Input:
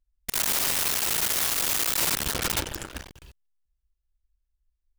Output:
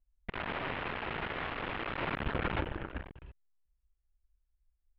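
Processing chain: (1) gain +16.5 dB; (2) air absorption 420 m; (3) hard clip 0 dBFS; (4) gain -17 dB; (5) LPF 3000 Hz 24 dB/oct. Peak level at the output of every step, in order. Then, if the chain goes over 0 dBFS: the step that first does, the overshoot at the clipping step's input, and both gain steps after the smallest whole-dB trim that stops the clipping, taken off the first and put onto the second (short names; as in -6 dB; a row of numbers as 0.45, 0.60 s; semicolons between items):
-2.0, -3.5, -3.5, -20.5, -20.5 dBFS; no overload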